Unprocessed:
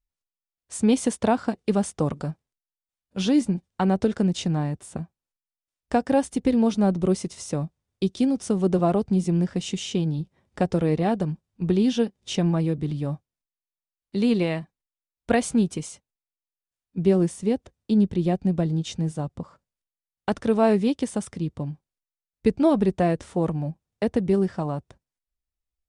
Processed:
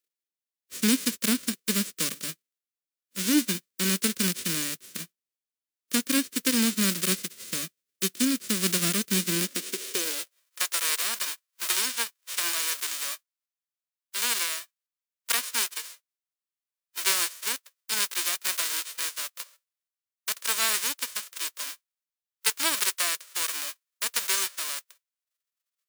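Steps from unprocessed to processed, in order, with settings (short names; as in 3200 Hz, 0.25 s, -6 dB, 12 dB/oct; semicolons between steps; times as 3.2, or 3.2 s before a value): spectral whitening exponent 0.1; fixed phaser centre 330 Hz, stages 4; high-pass sweep 140 Hz -> 840 Hz, 9.08–10.48; gain -3.5 dB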